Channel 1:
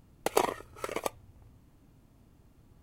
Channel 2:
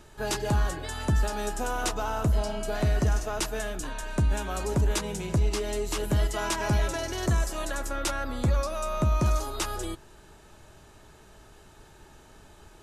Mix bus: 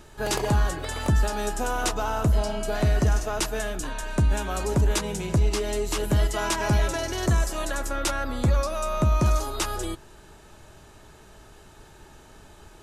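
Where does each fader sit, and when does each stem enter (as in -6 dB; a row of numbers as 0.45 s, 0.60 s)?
-6.0 dB, +3.0 dB; 0.00 s, 0.00 s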